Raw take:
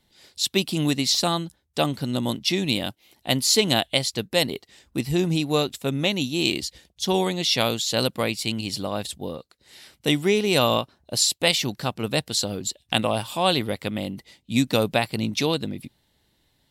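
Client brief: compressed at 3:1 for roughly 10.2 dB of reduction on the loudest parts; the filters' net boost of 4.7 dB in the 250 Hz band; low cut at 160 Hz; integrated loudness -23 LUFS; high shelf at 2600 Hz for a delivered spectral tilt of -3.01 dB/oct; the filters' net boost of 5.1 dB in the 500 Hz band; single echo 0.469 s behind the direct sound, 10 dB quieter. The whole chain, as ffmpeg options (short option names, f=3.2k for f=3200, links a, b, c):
-af "highpass=160,equalizer=f=250:t=o:g=5.5,equalizer=f=500:t=o:g=4.5,highshelf=f=2.6k:g=7,acompressor=threshold=-25dB:ratio=3,aecho=1:1:469:0.316,volume=4dB"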